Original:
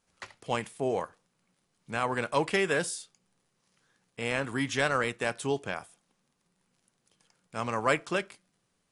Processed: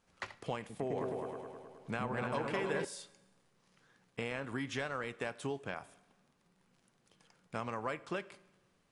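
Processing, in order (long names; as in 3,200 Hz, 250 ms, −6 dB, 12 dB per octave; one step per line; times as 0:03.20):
high-shelf EQ 5,200 Hz −10.5 dB
downward compressor 6 to 1, threshold −39 dBFS, peak gain reduction 17.5 dB
0:00.59–0:02.85: echo whose low-pass opens from repeat to repeat 105 ms, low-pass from 400 Hz, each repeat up 2 octaves, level 0 dB
four-comb reverb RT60 1.2 s, combs from 32 ms, DRR 19.5 dB
level +3.5 dB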